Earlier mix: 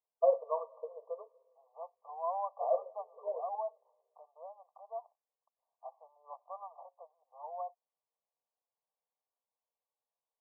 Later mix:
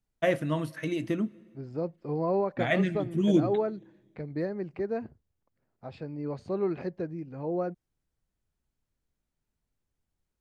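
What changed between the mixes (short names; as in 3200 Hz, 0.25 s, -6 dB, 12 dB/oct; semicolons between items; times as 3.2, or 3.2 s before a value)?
second voice: remove elliptic high-pass 690 Hz, stop band 50 dB; master: remove brick-wall FIR band-pass 430–1200 Hz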